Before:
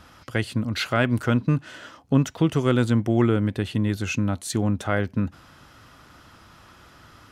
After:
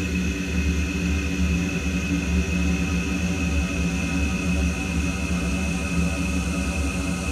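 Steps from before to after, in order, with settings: frequency shift -30 Hz; Paulstretch 29×, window 1.00 s, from 3.99; gain +1.5 dB

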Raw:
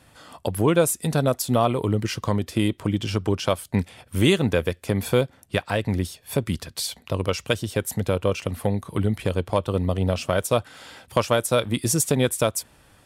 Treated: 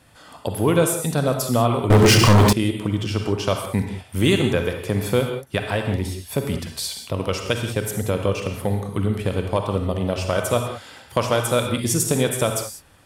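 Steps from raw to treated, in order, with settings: reverb, pre-delay 33 ms, DRR 4 dB; 1.9–2.53 sample leveller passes 5

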